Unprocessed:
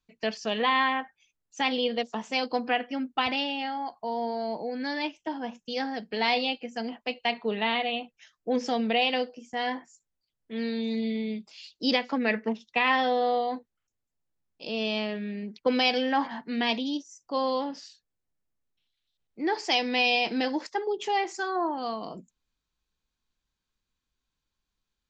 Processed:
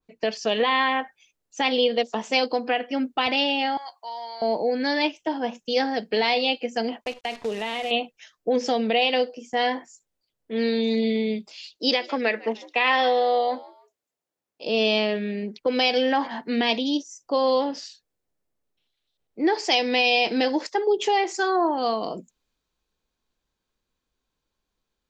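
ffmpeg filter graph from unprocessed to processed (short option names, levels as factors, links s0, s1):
-filter_complex "[0:a]asettb=1/sr,asplit=3[s0][s1][s2];[s0]atrim=end=3.774[s3];[s1]atrim=start=3.77:end=4.42,asetpts=PTS-STARTPTS,afade=t=in:d=0.004:c=qsin,afade=t=out:st=0.646:d=0.004:c=qsin,highpass=1500,aecho=1:1:5.3:0.44,atrim=end_sample=28665[s4];[s2]atrim=start=4.416[s5];[s3][s4]acrossfade=d=0.004:c1=hsin:c2=qsin[s6];[s6][s5]acrossfade=d=0.004:c1=qsin:c2=hsin,asettb=1/sr,asplit=3[s7][s8][s9];[s7]atrim=end=7.044[s10];[s8]atrim=start=7.04:end=7.91,asetpts=PTS-STARTPTS,afade=t=in:d=0.004:c=qsin,afade=t=out:st=0.866:d=0.004:c=qsin,acrusher=bits=7:dc=4:mix=0:aa=0.000001,acompressor=threshold=0.0178:ratio=3:attack=3.2:release=140:knee=1:detection=peak,lowpass=6900[s11];[s9]atrim=start=7.906[s12];[s10][s11]acrossfade=d=0.004:c1=hsin:c2=qsin[s13];[s13][s12]acrossfade=d=0.004:c1=qsin:c2=hsin,asettb=1/sr,asplit=3[s14][s15][s16];[s14]atrim=end=11.774[s17];[s15]atrim=start=11.77:end=14.66,asetpts=PTS-STARTPTS,afade=t=in:d=0.004:c=qsin,afade=t=out:st=2.886:d=0.004:c=qsin,highpass=f=430:p=1,asplit=3[s18][s19][s20];[s19]adelay=152,afreqshift=84,volume=0.0794[s21];[s20]adelay=304,afreqshift=168,volume=0.0279[s22];[s18][s21][s22]amix=inputs=3:normalize=0,atrim=end_sample=127449[s23];[s16]atrim=start=14.656[s24];[s17][s23]acrossfade=d=0.004:c1=hsin:c2=qsin[s25];[s25][s24]acrossfade=d=0.004:c1=qsin:c2=hsin,equalizer=f=490:w=0.74:g=9,alimiter=limit=0.178:level=0:latency=1:release=293,adynamicequalizer=threshold=0.01:dfrequency=1700:dqfactor=0.7:tfrequency=1700:tqfactor=0.7:attack=5:release=100:ratio=0.375:range=3.5:mode=boostabove:tftype=highshelf,volume=1.19"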